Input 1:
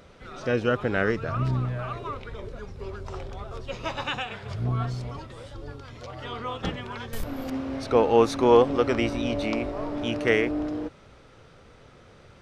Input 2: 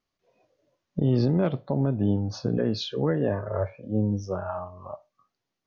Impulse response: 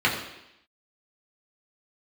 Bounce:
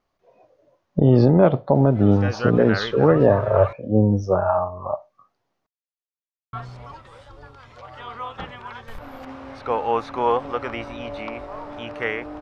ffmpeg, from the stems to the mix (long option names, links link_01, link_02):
-filter_complex "[0:a]bandreject=frequency=660:width=12,acrossover=split=4000[link_01][link_02];[link_02]acompressor=threshold=-53dB:ratio=4:attack=1:release=60[link_03];[link_01][link_03]amix=inputs=2:normalize=0,equalizer=frequency=380:width_type=o:width=2.1:gain=-10.5,adelay=1750,volume=-6dB,asplit=3[link_04][link_05][link_06];[link_04]atrim=end=3.73,asetpts=PTS-STARTPTS,afade=type=out:start_time=3.726:duration=0.004:curve=hsin[link_07];[link_05]atrim=start=3.73:end=6.53,asetpts=PTS-STARTPTS,volume=0[link_08];[link_06]atrim=start=6.53,asetpts=PTS-STARTPTS,afade=type=in:duration=0.004:curve=hsin[link_09];[link_07][link_08][link_09]concat=n=3:v=0:a=1[link_10];[1:a]lowshelf=frequency=130:gain=11.5,volume=-0.5dB[link_11];[link_10][link_11]amix=inputs=2:normalize=0,equalizer=frequency=770:width_type=o:width=2.6:gain=13.5"